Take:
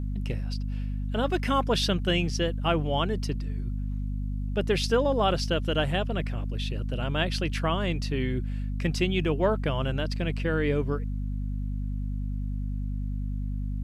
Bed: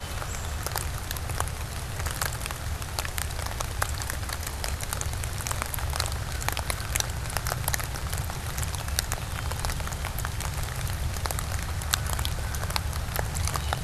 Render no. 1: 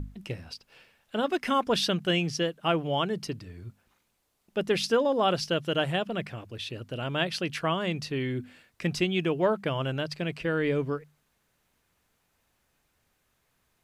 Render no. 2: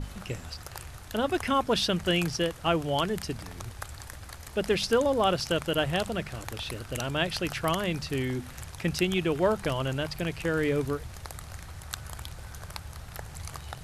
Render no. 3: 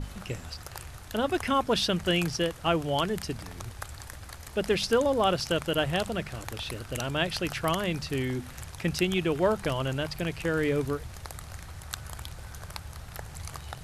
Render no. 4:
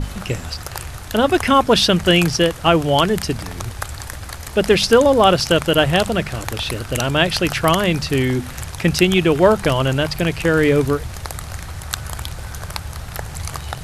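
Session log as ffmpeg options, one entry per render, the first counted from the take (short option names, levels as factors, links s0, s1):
-af "bandreject=f=50:t=h:w=6,bandreject=f=100:t=h:w=6,bandreject=f=150:t=h:w=6,bandreject=f=200:t=h:w=6,bandreject=f=250:t=h:w=6"
-filter_complex "[1:a]volume=0.266[s0];[0:a][s0]amix=inputs=2:normalize=0"
-af anull
-af "volume=3.98,alimiter=limit=0.891:level=0:latency=1"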